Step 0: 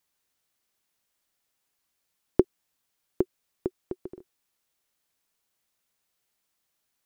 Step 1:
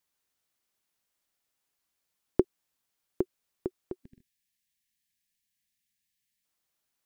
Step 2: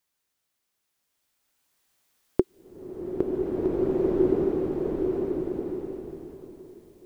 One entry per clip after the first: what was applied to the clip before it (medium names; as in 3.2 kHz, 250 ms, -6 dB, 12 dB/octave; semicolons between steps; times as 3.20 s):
time-frequency box 4.05–6.45 s, 260–1600 Hz -24 dB; trim -3.5 dB
swelling reverb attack 1910 ms, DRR -9.5 dB; trim +2 dB